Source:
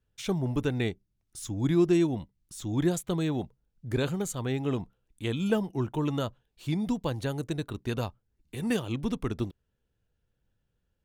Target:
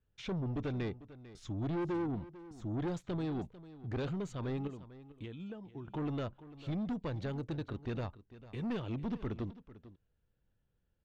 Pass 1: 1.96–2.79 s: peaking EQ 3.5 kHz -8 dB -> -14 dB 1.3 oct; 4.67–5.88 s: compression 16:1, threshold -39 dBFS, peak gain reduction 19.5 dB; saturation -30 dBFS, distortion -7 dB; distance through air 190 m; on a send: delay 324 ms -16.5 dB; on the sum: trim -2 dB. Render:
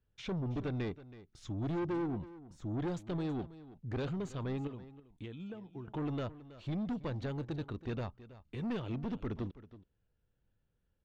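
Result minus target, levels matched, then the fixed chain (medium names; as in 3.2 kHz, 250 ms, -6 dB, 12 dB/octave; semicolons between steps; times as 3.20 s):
echo 123 ms early
1.96–2.79 s: peaking EQ 3.5 kHz -8 dB -> -14 dB 1.3 oct; 4.67–5.88 s: compression 16:1, threshold -39 dBFS, peak gain reduction 19.5 dB; saturation -30 dBFS, distortion -7 dB; distance through air 190 m; on a send: delay 447 ms -16.5 dB; on the sum: trim -2 dB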